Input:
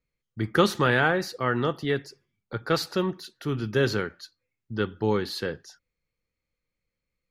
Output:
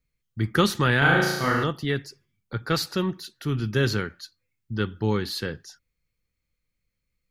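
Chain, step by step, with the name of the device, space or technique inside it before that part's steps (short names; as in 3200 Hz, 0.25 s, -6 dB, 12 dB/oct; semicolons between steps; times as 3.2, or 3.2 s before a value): 0.98–1.64 flutter echo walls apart 6.1 m, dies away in 1 s; smiley-face EQ (low shelf 150 Hz +5 dB; bell 580 Hz -6 dB 1.8 oct; high shelf 7900 Hz +4 dB); gain +2 dB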